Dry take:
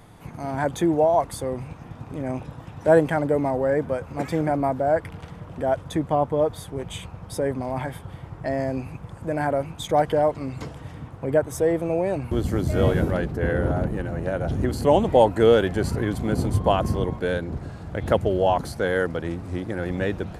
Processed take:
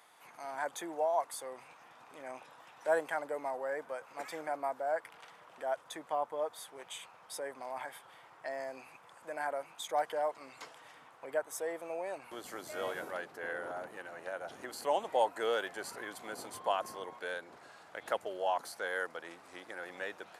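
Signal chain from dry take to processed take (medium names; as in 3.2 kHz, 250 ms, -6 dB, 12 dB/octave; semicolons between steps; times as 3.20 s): dynamic bell 3 kHz, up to -4 dB, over -39 dBFS, Q 0.71; high-pass 890 Hz 12 dB/octave; trim -5.5 dB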